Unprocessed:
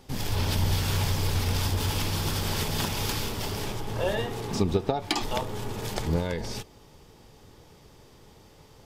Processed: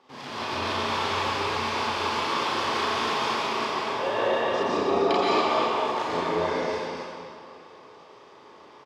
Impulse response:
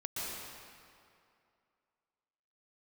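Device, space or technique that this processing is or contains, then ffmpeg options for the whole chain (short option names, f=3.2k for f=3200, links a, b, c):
station announcement: -filter_complex "[0:a]highpass=360,lowpass=3.6k,equalizer=f=1.1k:t=o:w=0.35:g=9,bandreject=f=50:t=h:w=6,bandreject=f=100:t=h:w=6,bandreject=f=150:t=h:w=6,bandreject=f=200:t=h:w=6,aecho=1:1:34.99|242|279.9:0.891|0.282|0.631[a];[1:a]atrim=start_sample=2205[b];[a][b]afir=irnorm=-1:irlink=0"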